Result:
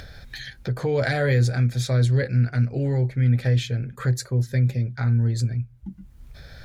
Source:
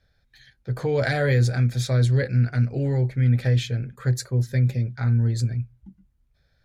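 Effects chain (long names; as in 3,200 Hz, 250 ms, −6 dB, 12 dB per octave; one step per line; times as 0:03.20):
upward compression, threshold −22 dBFS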